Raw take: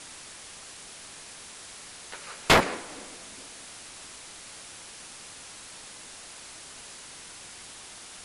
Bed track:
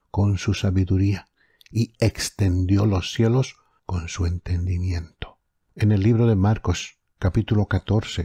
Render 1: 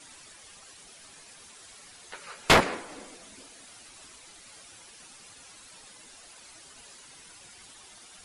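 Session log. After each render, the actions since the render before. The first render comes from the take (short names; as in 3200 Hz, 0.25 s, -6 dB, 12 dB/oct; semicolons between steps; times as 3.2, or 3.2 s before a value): denoiser 10 dB, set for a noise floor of -46 dBFS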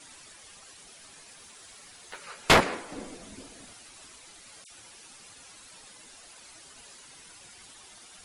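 1.3–2.27 block floating point 7-bit; 2.92–3.73 low shelf 450 Hz +11 dB; 4.64–5.04 dispersion lows, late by 64 ms, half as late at 2300 Hz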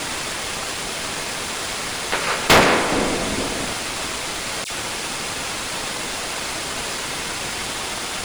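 per-bin compression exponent 0.6; sample leveller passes 3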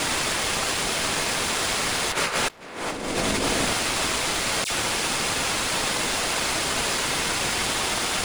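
negative-ratio compressor -24 dBFS, ratio -0.5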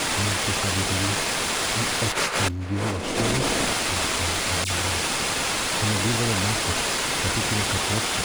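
add bed track -8.5 dB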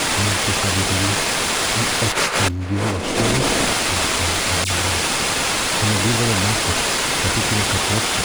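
gain +5 dB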